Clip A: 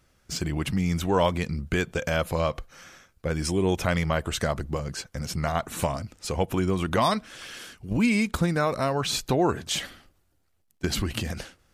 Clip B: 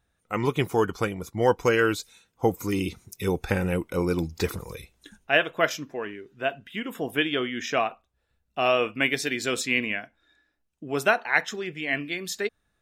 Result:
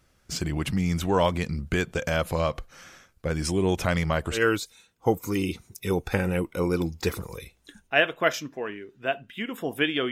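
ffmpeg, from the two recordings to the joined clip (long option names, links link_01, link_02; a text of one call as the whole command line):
ffmpeg -i cue0.wav -i cue1.wav -filter_complex "[0:a]apad=whole_dur=10.11,atrim=end=10.11,atrim=end=4.43,asetpts=PTS-STARTPTS[link_01];[1:a]atrim=start=1.68:end=7.48,asetpts=PTS-STARTPTS[link_02];[link_01][link_02]acrossfade=duration=0.12:curve1=tri:curve2=tri" out.wav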